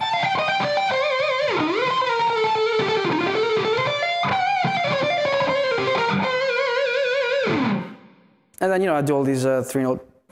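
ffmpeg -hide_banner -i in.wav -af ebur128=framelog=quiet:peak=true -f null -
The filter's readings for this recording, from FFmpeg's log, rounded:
Integrated loudness:
  I:         -21.0 LUFS
  Threshold: -31.2 LUFS
Loudness range:
  LRA:         1.6 LU
  Threshold: -41.1 LUFS
  LRA low:   -22.1 LUFS
  LRA high:  -20.6 LUFS
True peak:
  Peak:       -8.0 dBFS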